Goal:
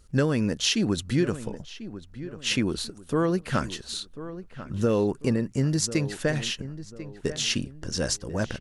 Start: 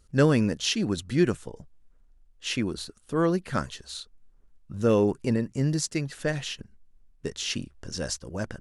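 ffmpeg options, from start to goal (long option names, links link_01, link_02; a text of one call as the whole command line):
ffmpeg -i in.wav -filter_complex "[0:a]acompressor=threshold=-24dB:ratio=6,asplit=2[link_01][link_02];[link_02]adelay=1043,lowpass=frequency=2200:poles=1,volume=-13.5dB,asplit=2[link_03][link_04];[link_04]adelay=1043,lowpass=frequency=2200:poles=1,volume=0.36,asplit=2[link_05][link_06];[link_06]adelay=1043,lowpass=frequency=2200:poles=1,volume=0.36[link_07];[link_03][link_05][link_07]amix=inputs=3:normalize=0[link_08];[link_01][link_08]amix=inputs=2:normalize=0,volume=4.5dB" out.wav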